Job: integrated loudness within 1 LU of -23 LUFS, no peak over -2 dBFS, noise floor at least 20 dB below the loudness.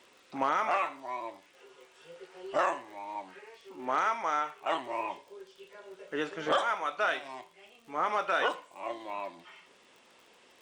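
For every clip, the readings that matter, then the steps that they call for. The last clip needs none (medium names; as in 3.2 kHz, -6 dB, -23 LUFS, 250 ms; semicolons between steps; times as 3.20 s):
tick rate 41 per s; loudness -32.5 LUFS; peak level -17.0 dBFS; loudness target -23.0 LUFS
-> de-click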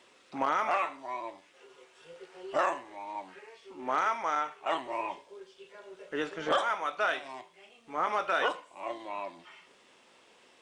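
tick rate 0 per s; loudness -32.5 LUFS; peak level -17.0 dBFS; loudness target -23.0 LUFS
-> trim +9.5 dB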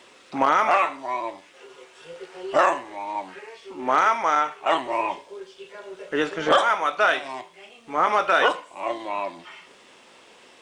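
loudness -23.0 LUFS; peak level -7.5 dBFS; noise floor -52 dBFS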